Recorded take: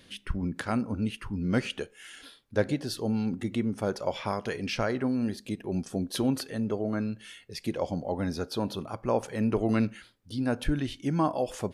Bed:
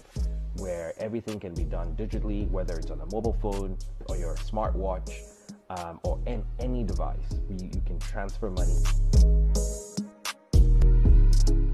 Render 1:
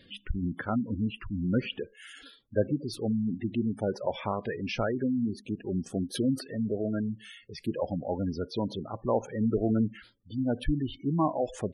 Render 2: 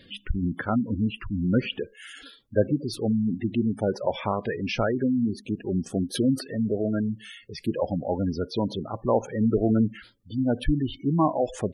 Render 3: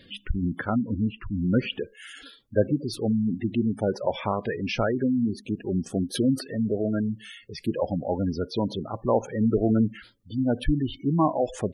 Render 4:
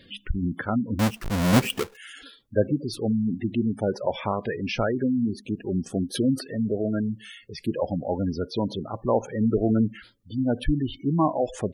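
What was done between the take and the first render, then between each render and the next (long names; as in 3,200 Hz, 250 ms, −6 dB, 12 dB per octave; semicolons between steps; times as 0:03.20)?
gate on every frequency bin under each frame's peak −15 dB strong; dynamic equaliser 4,800 Hz, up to −5 dB, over −56 dBFS, Q 2.4
level +4.5 dB
0:00.70–0:01.37: high-frequency loss of the air 400 metres
0:00.99–0:01.97: each half-wave held at its own peak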